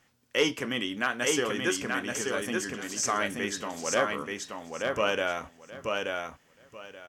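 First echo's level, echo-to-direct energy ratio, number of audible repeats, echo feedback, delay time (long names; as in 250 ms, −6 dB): −3.5 dB, −3.5 dB, 3, 19%, 880 ms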